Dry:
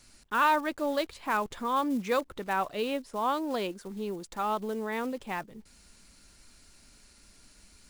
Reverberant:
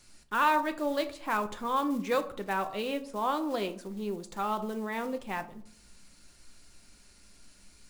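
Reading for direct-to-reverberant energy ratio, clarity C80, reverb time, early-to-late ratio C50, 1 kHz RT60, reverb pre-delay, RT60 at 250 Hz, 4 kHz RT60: 7.5 dB, 18.0 dB, 0.60 s, 14.5 dB, 0.55 s, 6 ms, 0.95 s, 0.35 s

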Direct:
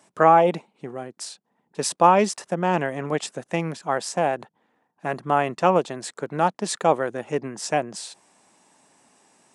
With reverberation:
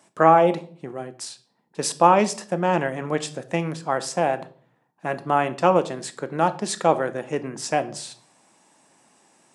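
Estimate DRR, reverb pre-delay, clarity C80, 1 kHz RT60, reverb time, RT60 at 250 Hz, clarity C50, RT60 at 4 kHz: 11.0 dB, 3 ms, 21.0 dB, 0.40 s, 0.45 s, 0.65 s, 17.0 dB, 0.40 s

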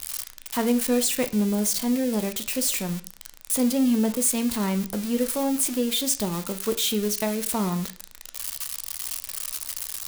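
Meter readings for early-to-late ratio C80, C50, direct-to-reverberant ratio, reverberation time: 20.0 dB, 15.0 dB, 9.0 dB, 0.45 s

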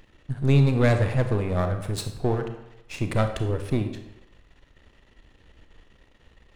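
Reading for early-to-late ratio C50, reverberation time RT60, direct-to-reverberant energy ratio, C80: 8.0 dB, 0.95 s, 6.5 dB, 10.5 dB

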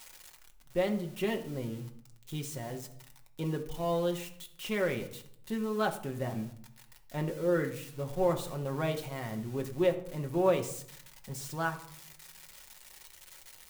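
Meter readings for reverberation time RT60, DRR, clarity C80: 0.65 s, 3.0 dB, 15.0 dB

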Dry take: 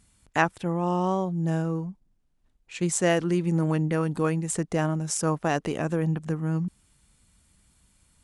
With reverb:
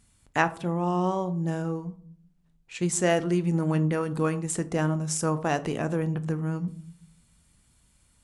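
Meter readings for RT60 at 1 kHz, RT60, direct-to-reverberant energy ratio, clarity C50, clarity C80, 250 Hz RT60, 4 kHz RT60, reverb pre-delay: 0.50 s, 0.55 s, 11.0 dB, 17.5 dB, 21.5 dB, 0.85 s, 0.30 s, 7 ms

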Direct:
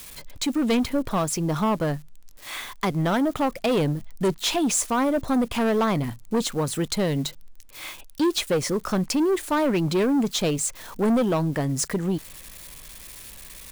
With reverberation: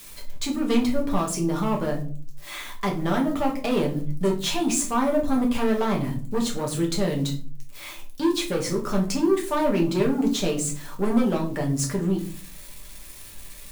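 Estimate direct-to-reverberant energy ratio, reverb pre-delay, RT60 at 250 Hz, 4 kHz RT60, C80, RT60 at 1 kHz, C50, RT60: -1.0 dB, 5 ms, 0.65 s, 0.30 s, 15.5 dB, 0.40 s, 10.5 dB, 0.45 s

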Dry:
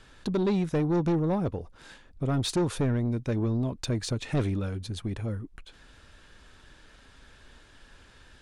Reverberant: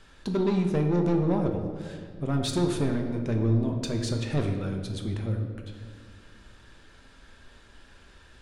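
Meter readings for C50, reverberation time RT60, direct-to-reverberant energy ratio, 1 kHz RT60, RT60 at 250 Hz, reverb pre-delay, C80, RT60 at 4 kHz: 5.5 dB, 2.1 s, 2.5 dB, 1.7 s, 2.7 s, 5 ms, 7.0 dB, 1.1 s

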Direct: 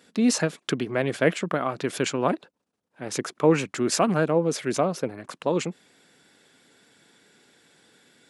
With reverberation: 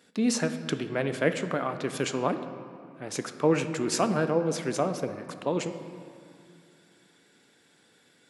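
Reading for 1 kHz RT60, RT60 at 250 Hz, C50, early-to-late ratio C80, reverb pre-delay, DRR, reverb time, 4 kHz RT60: 2.4 s, 3.2 s, 10.0 dB, 11.0 dB, 7 ms, 8.5 dB, 2.4 s, 1.4 s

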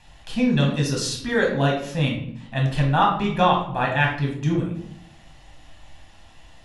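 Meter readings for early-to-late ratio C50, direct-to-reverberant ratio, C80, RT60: 5.5 dB, -1.0 dB, 9.5 dB, 0.65 s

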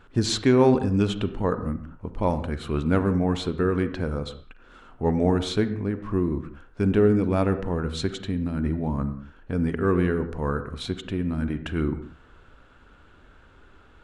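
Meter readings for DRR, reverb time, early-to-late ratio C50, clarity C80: 10.5 dB, no single decay rate, 11.5 dB, 13.5 dB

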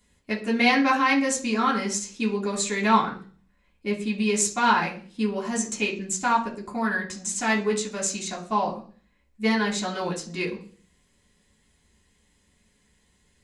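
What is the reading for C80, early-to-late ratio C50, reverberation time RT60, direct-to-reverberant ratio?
15.5 dB, 11.0 dB, 0.40 s, -3.5 dB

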